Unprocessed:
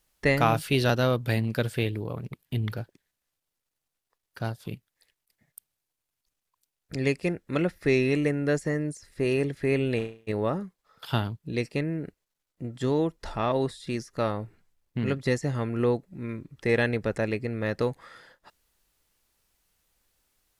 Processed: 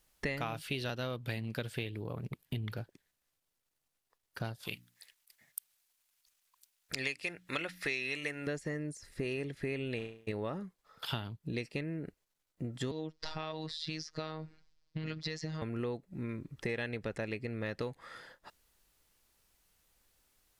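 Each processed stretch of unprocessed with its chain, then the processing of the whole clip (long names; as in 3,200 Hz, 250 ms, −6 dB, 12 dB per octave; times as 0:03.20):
0:04.63–0:08.47: tilt shelving filter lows −9 dB, about 660 Hz + mains-hum notches 60/120/180/240/300 Hz
0:12.91–0:15.62: low-pass with resonance 4,900 Hz, resonance Q 3.2 + downward compressor 3 to 1, threshold −27 dBFS + phases set to zero 157 Hz
whole clip: dynamic equaliser 3,000 Hz, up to +6 dB, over −46 dBFS, Q 0.98; downward compressor 5 to 1, threshold −35 dBFS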